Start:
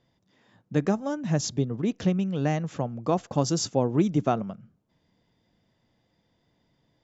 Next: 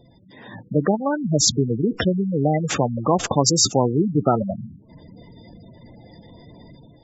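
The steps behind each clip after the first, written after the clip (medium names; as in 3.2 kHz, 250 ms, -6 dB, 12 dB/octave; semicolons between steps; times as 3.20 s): spectral gate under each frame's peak -15 dB strong; level rider gain up to 8 dB; spectrum-flattening compressor 2:1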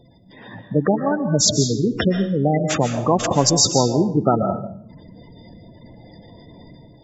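reverberation RT60 0.60 s, pre-delay 100 ms, DRR 7 dB; trim +1 dB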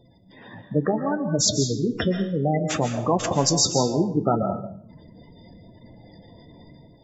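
flange 0.68 Hz, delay 9.1 ms, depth 4.6 ms, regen -63%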